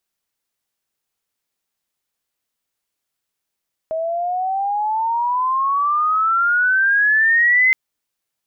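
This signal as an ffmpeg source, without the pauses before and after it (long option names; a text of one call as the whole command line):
ffmpeg -f lavfi -i "aevalsrc='pow(10,(-10.5+9*(t/3.82-1))/20)*sin(2*PI*635*3.82/(20.5*log(2)/12)*(exp(20.5*log(2)/12*t/3.82)-1))':duration=3.82:sample_rate=44100" out.wav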